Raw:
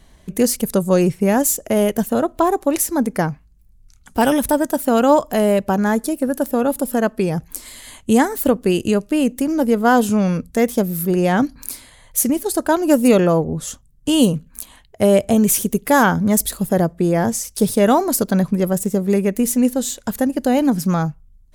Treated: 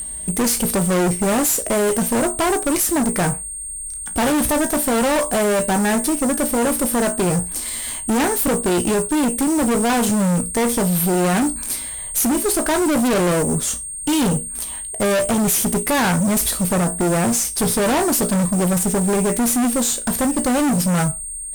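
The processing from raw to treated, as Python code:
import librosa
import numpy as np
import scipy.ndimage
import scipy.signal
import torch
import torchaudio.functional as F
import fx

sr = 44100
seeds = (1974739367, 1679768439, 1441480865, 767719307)

y = x + 10.0 ** (-27.0 / 20.0) * np.sin(2.0 * np.pi * 8600.0 * np.arange(len(x)) / sr)
y = fx.comb_fb(y, sr, f0_hz=59.0, decay_s=0.22, harmonics='all', damping=0.0, mix_pct=70)
y = fx.fuzz(y, sr, gain_db=30.0, gate_db=-38.0)
y = y * librosa.db_to_amplitude(-2.5)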